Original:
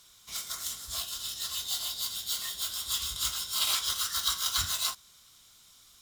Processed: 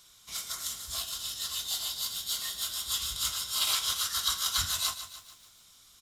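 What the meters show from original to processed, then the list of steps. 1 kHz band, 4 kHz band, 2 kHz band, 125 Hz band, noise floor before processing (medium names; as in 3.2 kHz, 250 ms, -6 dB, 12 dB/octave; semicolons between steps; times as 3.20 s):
+0.5 dB, +0.5 dB, +0.5 dB, 0.0 dB, -59 dBFS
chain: resampled via 32 kHz; bit-crushed delay 146 ms, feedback 55%, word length 9-bit, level -11.5 dB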